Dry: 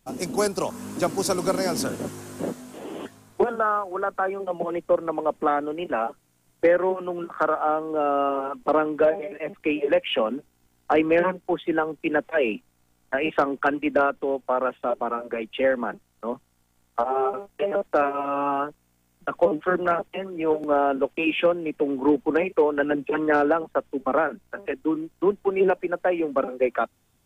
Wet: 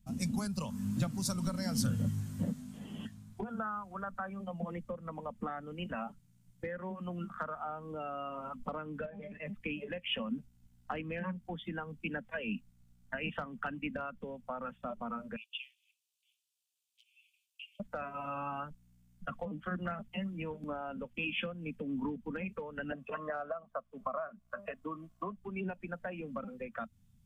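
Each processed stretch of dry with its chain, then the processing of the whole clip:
0:09.06–0:09.46: high-shelf EQ 8,700 Hz −12 dB + downward compressor, threshold −22 dBFS
0:15.36–0:17.80: Butterworth high-pass 2,400 Hz 96 dB per octave + high-shelf EQ 5,100 Hz −3 dB
0:22.92–0:25.37: low-shelf EQ 400 Hz −6.5 dB + hollow resonant body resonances 650/1,100 Hz, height 18 dB, ringing for 25 ms
whole clip: downward compressor 6 to 1, threshold −25 dBFS; noise reduction from a noise print of the clip's start 8 dB; drawn EQ curve 220 Hz 0 dB, 330 Hz −27 dB, 3,300 Hz −15 dB; level +11.5 dB

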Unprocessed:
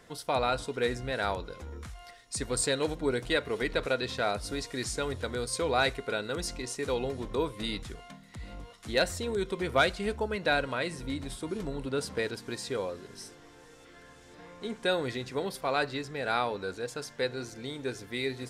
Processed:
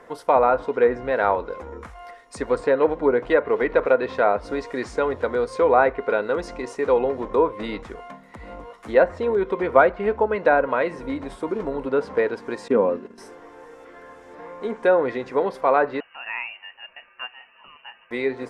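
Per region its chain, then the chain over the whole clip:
0:12.68–0:13.18: downward expander −41 dBFS + hollow resonant body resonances 220/2,700 Hz, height 15 dB, ringing for 40 ms
0:16.00–0:18.11: four-pole ladder high-pass 490 Hz, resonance 50% + voice inversion scrambler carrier 3,300 Hz
whole clip: treble cut that deepens with the level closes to 1,700 Hz, closed at −23.5 dBFS; octave-band graphic EQ 125/250/500/1,000/2,000/4,000/8,000 Hz −5/+5/+10/+11/+5/−6/−4 dB

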